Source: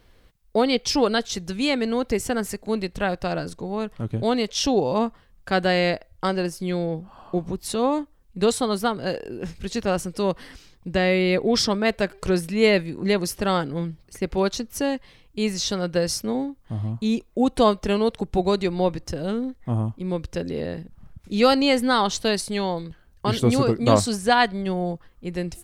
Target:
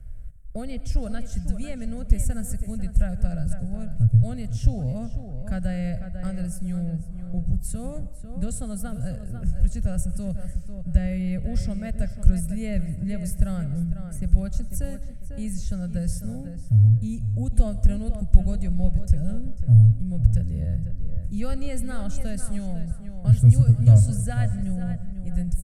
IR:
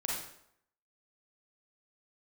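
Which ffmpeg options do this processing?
-filter_complex "[0:a]aemphasis=mode=reproduction:type=riaa,acrossover=split=3500[link_01][link_02];[link_02]acompressor=threshold=-43dB:ratio=4:attack=1:release=60[link_03];[link_01][link_03]amix=inputs=2:normalize=0,firequalizer=gain_entry='entry(120,0);entry(370,-23);entry(620,-4);entry(960,-26);entry(1400,-7);entry(3700,-18);entry(8300,14)':delay=0.05:min_phase=1,asplit=2[link_04][link_05];[link_05]adelay=497,lowpass=frequency=4200:poles=1,volume=-11dB,asplit=2[link_06][link_07];[link_07]adelay=497,lowpass=frequency=4200:poles=1,volume=0.25,asplit=2[link_08][link_09];[link_09]adelay=497,lowpass=frequency=4200:poles=1,volume=0.25[link_10];[link_04][link_06][link_08][link_10]amix=inputs=4:normalize=0,acrossover=split=140|3000[link_11][link_12][link_13];[link_12]acompressor=threshold=-55dB:ratio=1.5[link_14];[link_11][link_14][link_13]amix=inputs=3:normalize=0,asplit=2[link_15][link_16];[1:a]atrim=start_sample=2205,adelay=102[link_17];[link_16][link_17]afir=irnorm=-1:irlink=0,volume=-19dB[link_18];[link_15][link_18]amix=inputs=2:normalize=0,volume=2.5dB"

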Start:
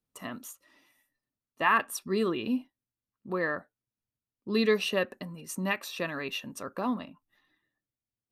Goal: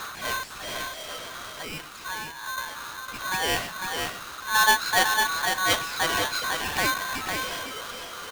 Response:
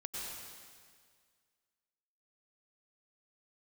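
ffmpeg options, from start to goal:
-filter_complex "[0:a]aeval=exprs='val(0)+0.5*0.0282*sgn(val(0))':channel_layout=same,lowpass=3900,asettb=1/sr,asplit=3[link_01][link_02][link_03];[link_01]atrim=end=0.494[link_04];[link_02]atrim=start=0.49:end=2.58,asetpts=PTS-STARTPTS,afade=type=in:duration=0.004:curve=qsin,afade=type=out:start_time=2.086:duration=0.004:curve=qsin,acompressor=threshold=-37dB:ratio=10[link_05];[link_03]atrim=start=2.576[link_06];[link_04][link_05]acrossfade=duration=0.004:curve1=hsin:curve2=qsin[link_07];[link_07][link_06]acrossfade=duration=0.004:curve1=qsin:curve2=hsin,tremolo=f=2.8:d=0.51,aecho=1:1:474|504:0.119|0.562,aeval=exprs='val(0)*sgn(sin(2*PI*1300*n/s))':channel_layout=same,volume=5dB"

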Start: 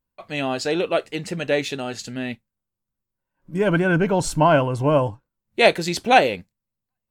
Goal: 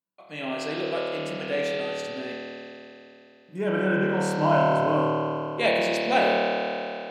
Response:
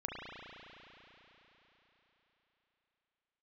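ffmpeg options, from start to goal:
-filter_complex "[0:a]highpass=frequency=150:width=0.5412,highpass=frequency=150:width=1.3066[link_01];[1:a]atrim=start_sample=2205,asetrate=57330,aresample=44100[link_02];[link_01][link_02]afir=irnorm=-1:irlink=0,volume=-4.5dB"

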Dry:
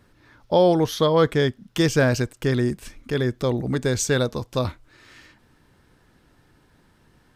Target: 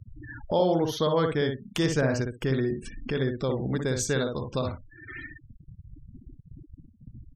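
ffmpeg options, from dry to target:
ffmpeg -i in.wav -filter_complex "[0:a]asplit=2[link_01][link_02];[link_02]acompressor=threshold=-29dB:ratio=12,volume=-0.5dB[link_03];[link_01][link_03]amix=inputs=2:normalize=0,asettb=1/sr,asplit=3[link_04][link_05][link_06];[link_04]atrim=end=2.014[link_07];[link_05]atrim=start=2.01:end=2.81,asetpts=PTS-STARTPTS,afade=type=in:duration=0.004:curve=qsin,afade=type=out:start_time=0.796:duration=0.004:curve=qsin,adynamicequalizer=threshold=0.00891:dfrequency=3400:dqfactor=1.3:tfrequency=3400:tqfactor=1.3:attack=5:release=100:ratio=0.375:range=2:mode=cutabove:tftype=bell[link_08];[link_06]atrim=start=2.806[link_09];[link_07][link_08]acrossfade=duration=0.004:curve1=hsin:curve2=qsin[link_10];[link_10][link_09]acrossfade=duration=0.004:curve1=qsin:curve2=hsin,asplit=2[link_11][link_12];[link_12]adelay=60,lowpass=frequency=3000:poles=1,volume=-4.5dB,asplit=2[link_13][link_14];[link_14]adelay=60,lowpass=frequency=3000:poles=1,volume=0.18,asplit=2[link_15][link_16];[link_16]adelay=60,lowpass=frequency=3000:poles=1,volume=0.18[link_17];[link_13][link_15][link_17]amix=inputs=3:normalize=0[link_18];[link_11][link_18]amix=inputs=2:normalize=0,afftfilt=real='re*gte(hypot(re,im),0.0178)':imag='im*gte(hypot(re,im),0.0178)':win_size=1024:overlap=0.75,agate=range=-33dB:threshold=-51dB:ratio=3:detection=peak,acompressor=mode=upward:threshold=-19dB:ratio=2.5,volume=-8dB" out.wav

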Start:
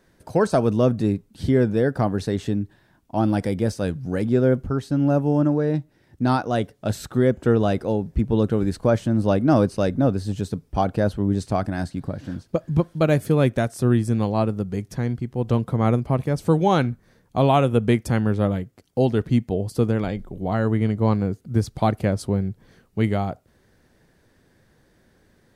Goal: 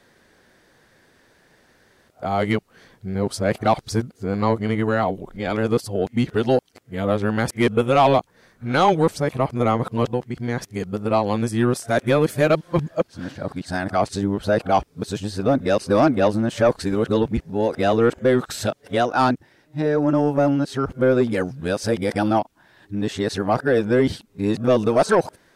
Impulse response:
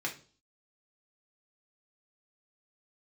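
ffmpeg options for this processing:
-filter_complex "[0:a]areverse,asplit=2[link_01][link_02];[link_02]highpass=frequency=720:poles=1,volume=13dB,asoftclip=type=tanh:threshold=-5dB[link_03];[link_01][link_03]amix=inputs=2:normalize=0,lowpass=frequency=6700:poles=1,volume=-6dB"

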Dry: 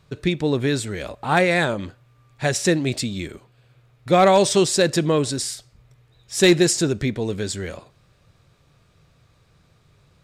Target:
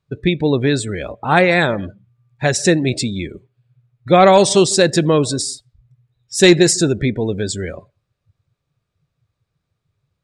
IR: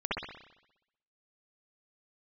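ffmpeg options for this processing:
-filter_complex "[0:a]asplit=2[link_01][link_02];[1:a]atrim=start_sample=2205,afade=type=out:start_time=0.2:duration=0.01,atrim=end_sample=9261,adelay=89[link_03];[link_02][link_03]afir=irnorm=-1:irlink=0,volume=-29.5dB[link_04];[link_01][link_04]amix=inputs=2:normalize=0,afftdn=noise_reduction=23:noise_floor=-36,volume=5dB"

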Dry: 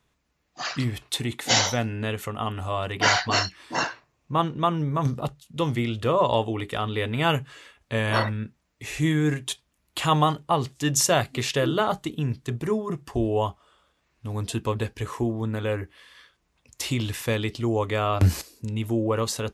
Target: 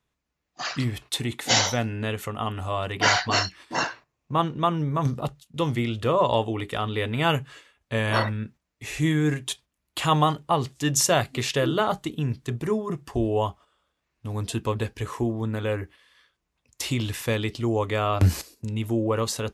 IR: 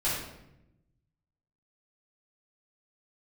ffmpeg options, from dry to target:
-af "agate=range=-8dB:threshold=-45dB:ratio=16:detection=peak"

